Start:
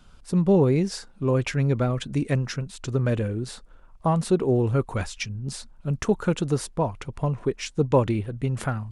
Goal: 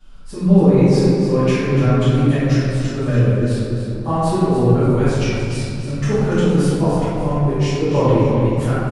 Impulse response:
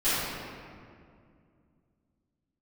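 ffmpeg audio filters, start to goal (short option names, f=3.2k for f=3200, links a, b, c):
-filter_complex "[0:a]aecho=1:1:288|576|864|1152:0.355|0.128|0.046|0.0166[a];[1:a]atrim=start_sample=2205[b];[a][b]afir=irnorm=-1:irlink=0,volume=-7.5dB"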